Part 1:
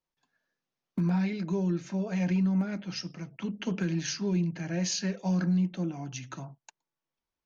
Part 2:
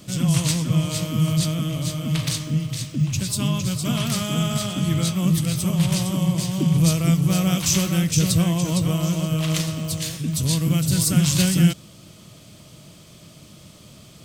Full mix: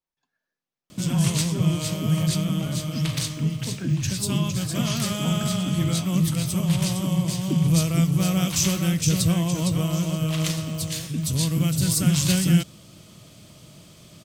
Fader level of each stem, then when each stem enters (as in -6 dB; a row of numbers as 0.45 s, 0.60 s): -3.5 dB, -2.0 dB; 0.00 s, 0.90 s